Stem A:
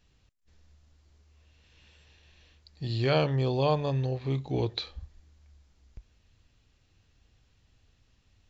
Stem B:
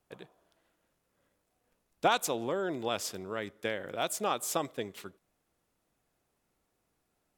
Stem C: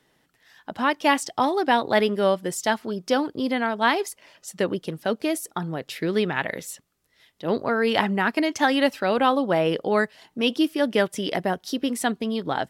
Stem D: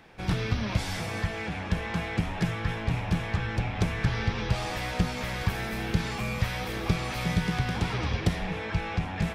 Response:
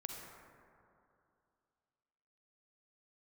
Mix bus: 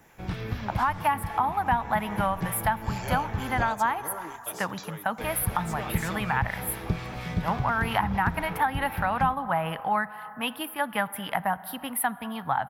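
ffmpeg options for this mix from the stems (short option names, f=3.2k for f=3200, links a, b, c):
-filter_complex "[0:a]highpass=650,equalizer=f=4.2k:t=o:w=0.24:g=-11.5,aexciter=amount=4.7:drive=9.6:freq=5.4k,volume=-5.5dB[a];[1:a]aecho=1:1:6.6:0.89,adelay=1550,volume=-10dB[b];[2:a]firequalizer=gain_entry='entry(130,0);entry(370,-22);entry(820,9);entry(6200,-27);entry(11000,11)':delay=0.05:min_phase=1,volume=-1dB,asplit=3[c][d][e];[d]volume=-12.5dB[f];[3:a]highshelf=f=3.9k:g=-9,acrossover=split=1100[g][h];[g]aeval=exprs='val(0)*(1-0.5/2+0.5/2*cos(2*PI*4.2*n/s))':c=same[i];[h]aeval=exprs='val(0)*(1-0.5/2-0.5/2*cos(2*PI*4.2*n/s))':c=same[j];[i][j]amix=inputs=2:normalize=0,volume=-3dB,asplit=3[k][l][m];[k]atrim=end=3.69,asetpts=PTS-STARTPTS,afade=t=out:st=3.686:d=0.004:c=hsin[n];[l]atrim=start=3.69:end=5.18,asetpts=PTS-STARTPTS,volume=0[o];[m]atrim=start=5.18,asetpts=PTS-STARTPTS,afade=t=in:d=0.004:c=hsin[p];[n][o][p]concat=n=3:v=0:a=1,asplit=2[q][r];[r]volume=-10.5dB[s];[e]apad=whole_len=393827[t];[b][t]sidechaingate=range=-33dB:threshold=-48dB:ratio=16:detection=peak[u];[4:a]atrim=start_sample=2205[v];[f][s]amix=inputs=2:normalize=0[w];[w][v]afir=irnorm=-1:irlink=0[x];[a][u][c][q][x]amix=inputs=5:normalize=0,acrossover=split=320[y][z];[z]acompressor=threshold=-23dB:ratio=5[aa];[y][aa]amix=inputs=2:normalize=0"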